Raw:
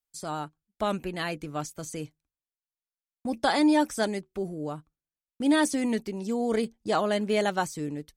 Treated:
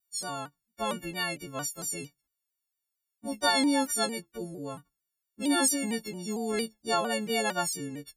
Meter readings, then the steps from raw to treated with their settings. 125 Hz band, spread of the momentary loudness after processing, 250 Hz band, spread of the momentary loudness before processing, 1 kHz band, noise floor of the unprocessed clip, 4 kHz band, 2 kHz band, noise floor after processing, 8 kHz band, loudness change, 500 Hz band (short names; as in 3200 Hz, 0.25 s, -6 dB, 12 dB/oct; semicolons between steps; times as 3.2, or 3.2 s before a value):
-5.0 dB, 15 LU, -4.5 dB, 14 LU, -2.0 dB, under -85 dBFS, +4.0 dB, -0.5 dB, under -85 dBFS, +8.0 dB, -1.5 dB, -4.5 dB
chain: frequency quantiser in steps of 4 st; shaped vibrato saw down 4.4 Hz, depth 100 cents; gain -4.5 dB